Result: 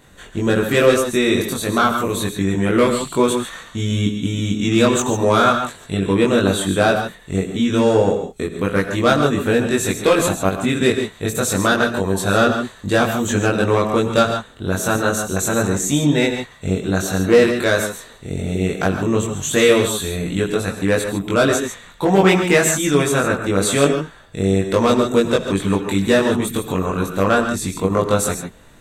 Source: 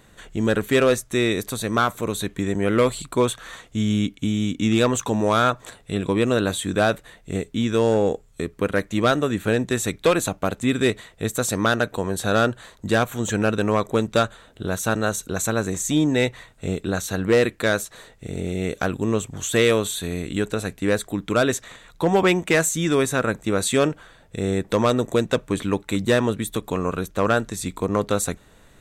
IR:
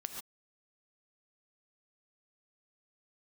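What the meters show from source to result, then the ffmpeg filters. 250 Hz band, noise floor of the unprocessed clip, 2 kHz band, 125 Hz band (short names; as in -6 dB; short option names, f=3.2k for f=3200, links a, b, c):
+4.5 dB, -53 dBFS, +4.5 dB, +4.5 dB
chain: -filter_complex "[0:a]asplit=2[a][b];[1:a]atrim=start_sample=2205,adelay=21[c];[b][c]afir=irnorm=-1:irlink=0,volume=2.5dB[d];[a][d]amix=inputs=2:normalize=0,volume=1dB"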